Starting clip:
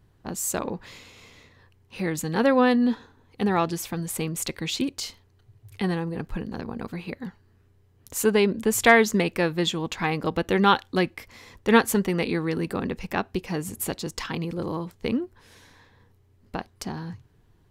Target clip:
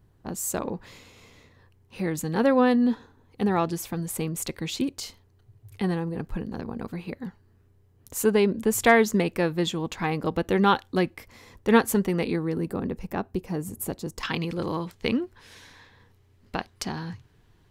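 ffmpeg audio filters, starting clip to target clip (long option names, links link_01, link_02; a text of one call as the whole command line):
ffmpeg -i in.wav -af "asetnsamples=nb_out_samples=441:pad=0,asendcmd='12.36 equalizer g -11.5;14.23 equalizer g 5.5',equalizer=frequency=3100:width_type=o:width=2.8:gain=-4.5" out.wav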